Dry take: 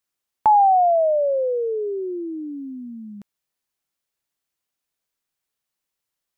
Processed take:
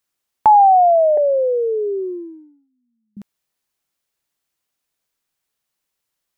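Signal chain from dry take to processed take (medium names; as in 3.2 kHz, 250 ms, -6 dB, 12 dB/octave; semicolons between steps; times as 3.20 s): 1.17–3.17 s: gate -28 dBFS, range -40 dB; trim +4.5 dB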